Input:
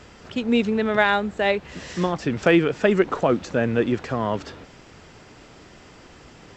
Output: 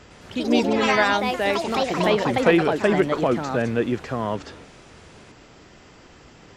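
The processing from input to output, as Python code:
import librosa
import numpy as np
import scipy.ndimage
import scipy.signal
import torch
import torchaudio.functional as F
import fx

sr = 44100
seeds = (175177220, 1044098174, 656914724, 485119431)

y = fx.echo_pitch(x, sr, ms=107, semitones=4, count=3, db_per_echo=-3.0)
y = F.gain(torch.from_numpy(y), -1.5).numpy()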